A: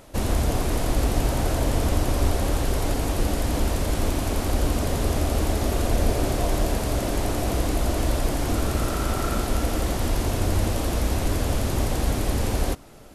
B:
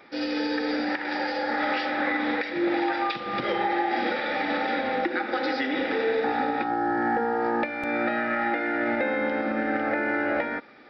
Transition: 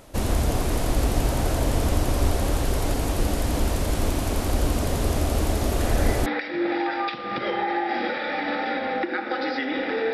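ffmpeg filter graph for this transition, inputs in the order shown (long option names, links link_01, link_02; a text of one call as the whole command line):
ffmpeg -i cue0.wav -i cue1.wav -filter_complex "[1:a]asplit=2[link_01][link_02];[0:a]apad=whole_dur=10.13,atrim=end=10.13,atrim=end=6.262[link_03];[link_02]atrim=start=2.278:end=6.15[link_04];[link_01]atrim=start=1.82:end=2.28,asetpts=PTS-STARTPTS,volume=-8.5dB,afade=type=in:duration=0.004:curve=hsin,afade=type=out:start_time=0.456:duration=0.004:curve=hsin,adelay=5800[link_05];[link_03][link_04]acrossfade=duration=0.004:curve1=hsin:curve2=hsin[link_06];[link_06][link_05]amix=inputs=2:normalize=0" out.wav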